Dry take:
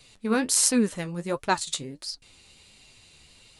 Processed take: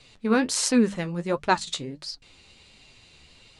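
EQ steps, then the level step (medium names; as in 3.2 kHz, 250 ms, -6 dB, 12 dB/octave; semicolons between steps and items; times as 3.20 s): distance through air 81 m; hum notches 50/100/150/200 Hz; +3.0 dB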